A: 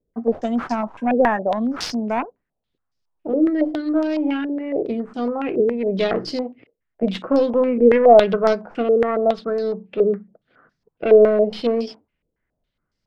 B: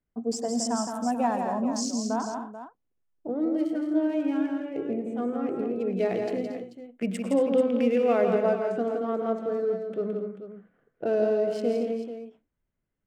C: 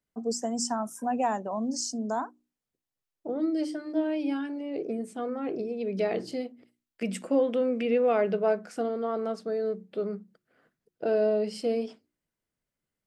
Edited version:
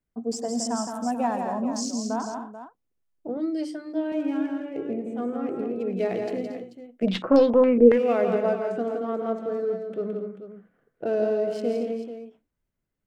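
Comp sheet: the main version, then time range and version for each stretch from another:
B
0:03.37–0:04.12: punch in from C
0:07.05–0:07.92: punch in from A, crossfade 0.16 s

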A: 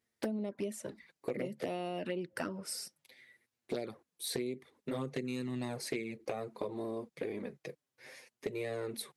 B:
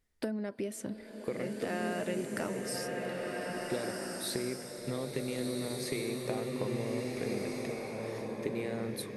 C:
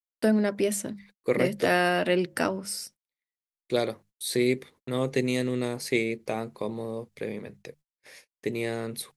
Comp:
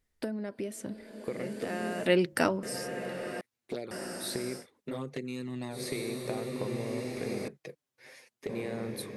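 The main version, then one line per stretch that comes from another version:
B
0:02.06–0:02.63: punch in from C
0:03.41–0:03.91: punch in from A
0:04.62–0:05.75: punch in from A, crossfade 0.10 s
0:07.48–0:08.49: punch in from A

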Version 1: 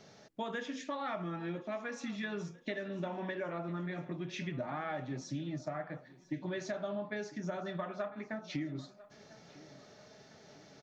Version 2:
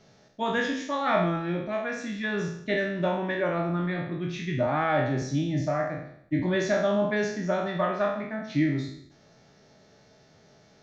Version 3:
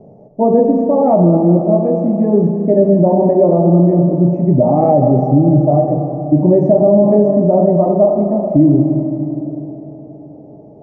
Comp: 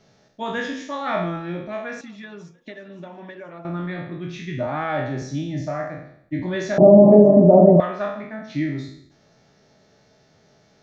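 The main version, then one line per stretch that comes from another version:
2
0:02.01–0:03.65: punch in from 1
0:06.78–0:07.80: punch in from 3

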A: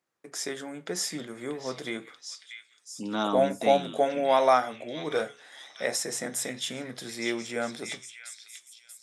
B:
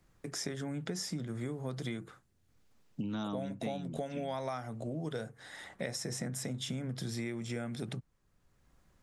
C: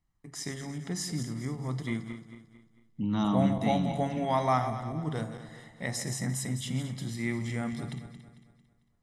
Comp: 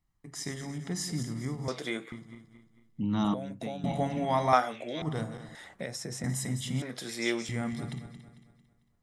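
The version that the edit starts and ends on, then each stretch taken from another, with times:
C
0:01.68–0:02.12: punch in from A
0:03.34–0:03.84: punch in from B
0:04.53–0:05.02: punch in from A
0:05.55–0:06.24: punch in from B
0:06.82–0:07.49: punch in from A

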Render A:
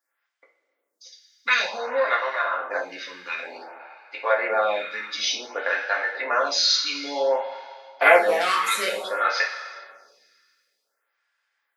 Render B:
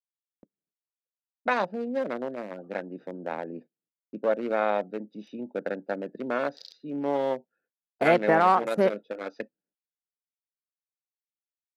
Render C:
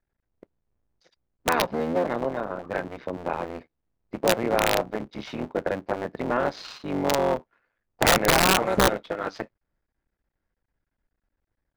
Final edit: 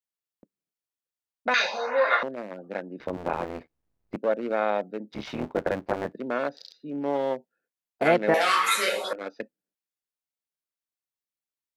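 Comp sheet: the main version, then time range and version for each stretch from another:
B
0:01.54–0:02.23: punch in from A
0:03.00–0:04.16: punch in from C
0:05.12–0:06.13: punch in from C
0:08.34–0:09.13: punch in from A

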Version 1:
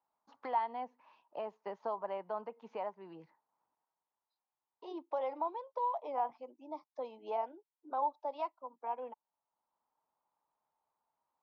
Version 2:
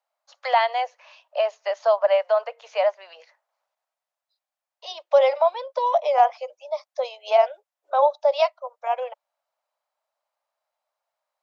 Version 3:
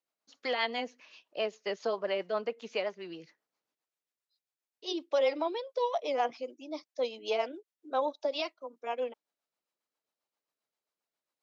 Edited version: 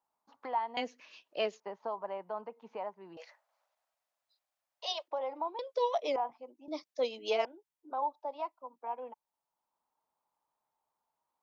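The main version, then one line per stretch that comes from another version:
1
0:00.77–0:01.60: punch in from 3
0:03.17–0:05.08: punch in from 2
0:05.59–0:06.16: punch in from 3
0:06.68–0:07.45: punch in from 3

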